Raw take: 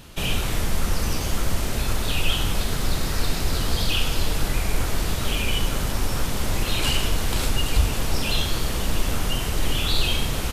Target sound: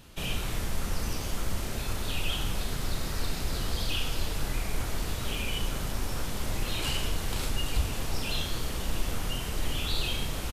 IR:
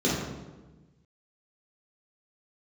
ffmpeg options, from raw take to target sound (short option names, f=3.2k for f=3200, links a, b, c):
-filter_complex "[0:a]asplit=2[a][b];[b]adelay=34,volume=-10.5dB[c];[a][c]amix=inputs=2:normalize=0,volume=-8dB"